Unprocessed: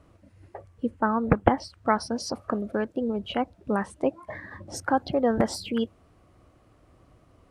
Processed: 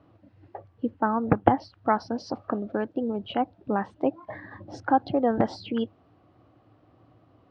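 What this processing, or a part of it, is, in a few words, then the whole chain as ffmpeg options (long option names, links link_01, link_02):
guitar cabinet: -af "highpass=110,equalizer=frequency=110:width_type=q:width=4:gain=8,equalizer=frequency=300:width_type=q:width=4:gain=6,equalizer=frequency=780:width_type=q:width=4:gain=6,equalizer=frequency=2200:width_type=q:width=4:gain=-4,lowpass=frequency=4300:width=0.5412,lowpass=frequency=4300:width=1.3066,volume=-2dB"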